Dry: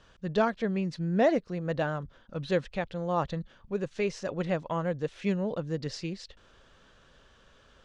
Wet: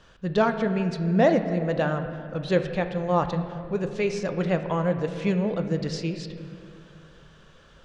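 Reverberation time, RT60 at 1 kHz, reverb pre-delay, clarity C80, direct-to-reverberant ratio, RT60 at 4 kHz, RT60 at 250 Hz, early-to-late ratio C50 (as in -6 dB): 2.6 s, 2.2 s, 6 ms, 9.5 dB, 7.0 dB, 1.6 s, 2.9 s, 9.0 dB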